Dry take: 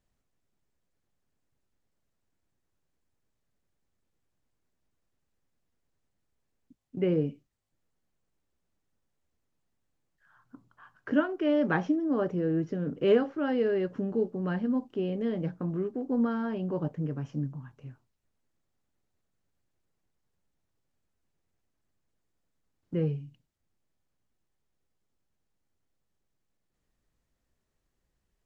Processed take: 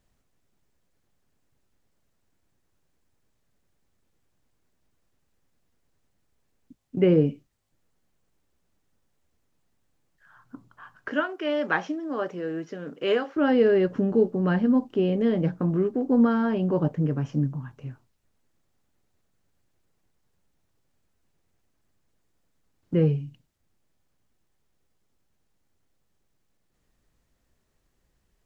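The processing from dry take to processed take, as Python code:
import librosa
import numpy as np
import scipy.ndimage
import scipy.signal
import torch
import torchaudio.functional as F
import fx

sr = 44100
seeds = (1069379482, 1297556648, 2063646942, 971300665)

y = fx.highpass(x, sr, hz=1100.0, slope=6, at=(11.08, 13.36))
y = y * 10.0 ** (7.5 / 20.0)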